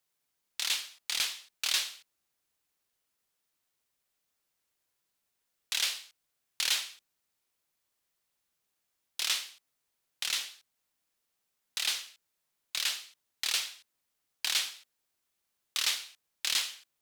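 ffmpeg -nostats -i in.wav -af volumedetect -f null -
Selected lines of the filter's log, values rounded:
mean_volume: -38.4 dB
max_volume: -15.1 dB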